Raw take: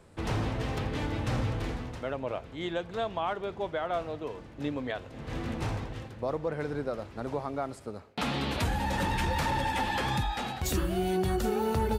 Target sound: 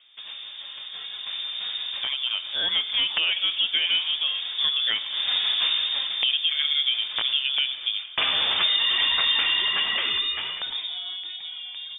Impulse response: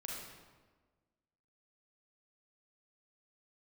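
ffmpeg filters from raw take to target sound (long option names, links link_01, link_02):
-filter_complex "[0:a]acompressor=threshold=-41dB:ratio=2.5,aeval=exprs='(mod(26.6*val(0)+1,2)-1)/26.6':channel_layout=same,dynaudnorm=framelen=300:gausssize=13:maxgain=16.5dB,asplit=2[link_01][link_02];[1:a]atrim=start_sample=2205,lowpass=frequency=2400:poles=1,adelay=23[link_03];[link_02][link_03]afir=irnorm=-1:irlink=0,volume=-11.5dB[link_04];[link_01][link_04]amix=inputs=2:normalize=0,lowpass=frequency=3100:width_type=q:width=0.5098,lowpass=frequency=3100:width_type=q:width=0.6013,lowpass=frequency=3100:width_type=q:width=0.9,lowpass=frequency=3100:width_type=q:width=2.563,afreqshift=-3700"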